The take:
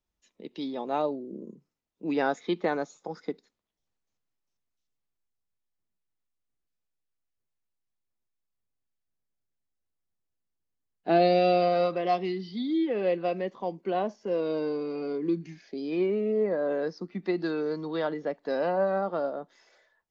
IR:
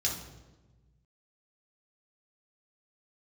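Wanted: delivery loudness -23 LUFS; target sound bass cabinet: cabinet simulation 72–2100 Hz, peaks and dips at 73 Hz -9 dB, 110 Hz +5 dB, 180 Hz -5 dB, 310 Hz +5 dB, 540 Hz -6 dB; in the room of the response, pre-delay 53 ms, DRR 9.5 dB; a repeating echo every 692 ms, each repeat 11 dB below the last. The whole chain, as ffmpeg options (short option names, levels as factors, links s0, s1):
-filter_complex "[0:a]aecho=1:1:692|1384|2076:0.282|0.0789|0.0221,asplit=2[s0][s1];[1:a]atrim=start_sample=2205,adelay=53[s2];[s1][s2]afir=irnorm=-1:irlink=0,volume=0.178[s3];[s0][s3]amix=inputs=2:normalize=0,highpass=f=72:w=0.5412,highpass=f=72:w=1.3066,equalizer=f=73:t=q:w=4:g=-9,equalizer=f=110:t=q:w=4:g=5,equalizer=f=180:t=q:w=4:g=-5,equalizer=f=310:t=q:w=4:g=5,equalizer=f=540:t=q:w=4:g=-6,lowpass=f=2100:w=0.5412,lowpass=f=2100:w=1.3066,volume=1.88"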